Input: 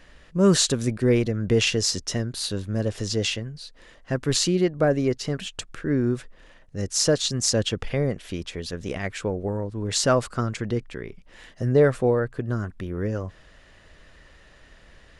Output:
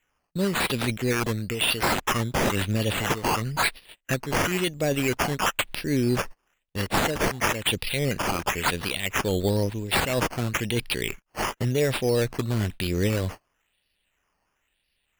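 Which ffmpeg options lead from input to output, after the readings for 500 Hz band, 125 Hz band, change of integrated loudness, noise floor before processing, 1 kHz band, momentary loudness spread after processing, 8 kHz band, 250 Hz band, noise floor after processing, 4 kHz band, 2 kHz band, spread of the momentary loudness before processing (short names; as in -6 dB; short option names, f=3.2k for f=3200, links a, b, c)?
-3.5 dB, -1.5 dB, -1.0 dB, -53 dBFS, +7.0 dB, 5 LU, -4.5 dB, -2.5 dB, -75 dBFS, -0.5 dB, +6.5 dB, 13 LU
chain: -filter_complex "[0:a]highshelf=f=1.9k:t=q:w=3:g=11.5,bandreject=f=5.1k:w=22,agate=range=-38dB:threshold=-37dB:ratio=16:detection=peak,areverse,acompressor=threshold=-25dB:ratio=16,areverse,alimiter=limit=-22.5dB:level=0:latency=1:release=269,acrossover=split=4700[a][b];[b]dynaudnorm=f=190:g=17:m=4.5dB[c];[a][c]amix=inputs=2:normalize=0,acrusher=samples=9:mix=1:aa=0.000001:lfo=1:lforange=5.4:lforate=0.99,volume=8dB"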